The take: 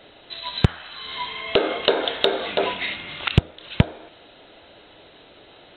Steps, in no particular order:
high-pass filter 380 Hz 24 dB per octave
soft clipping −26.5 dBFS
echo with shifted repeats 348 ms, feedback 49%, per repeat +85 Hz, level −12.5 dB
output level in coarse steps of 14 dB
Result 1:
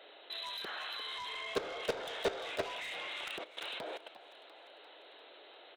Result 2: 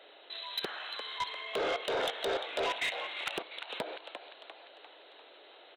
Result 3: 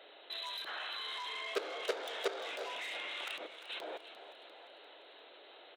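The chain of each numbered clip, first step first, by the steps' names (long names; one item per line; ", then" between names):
high-pass filter, then soft clipping, then echo with shifted repeats, then output level in coarse steps
high-pass filter, then output level in coarse steps, then echo with shifted repeats, then soft clipping
soft clipping, then output level in coarse steps, then echo with shifted repeats, then high-pass filter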